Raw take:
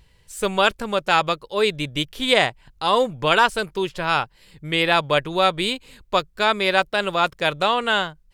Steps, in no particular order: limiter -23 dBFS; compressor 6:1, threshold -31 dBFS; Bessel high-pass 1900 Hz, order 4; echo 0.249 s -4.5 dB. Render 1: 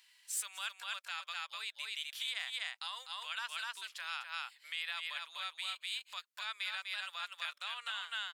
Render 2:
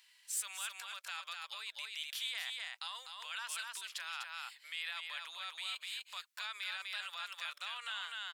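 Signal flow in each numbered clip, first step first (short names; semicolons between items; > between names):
echo > compressor > limiter > Bessel high-pass; limiter > echo > compressor > Bessel high-pass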